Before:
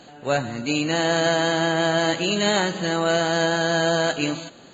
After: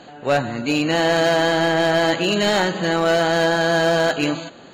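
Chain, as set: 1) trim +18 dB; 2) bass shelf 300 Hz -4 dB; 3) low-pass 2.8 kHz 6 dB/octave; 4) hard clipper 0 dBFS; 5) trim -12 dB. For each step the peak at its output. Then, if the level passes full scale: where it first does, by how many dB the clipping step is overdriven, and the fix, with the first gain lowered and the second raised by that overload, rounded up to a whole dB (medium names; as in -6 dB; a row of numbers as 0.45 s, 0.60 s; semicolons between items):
+10.0 dBFS, +8.5 dBFS, +7.5 dBFS, 0.0 dBFS, -12.0 dBFS; step 1, 7.5 dB; step 1 +10 dB, step 5 -4 dB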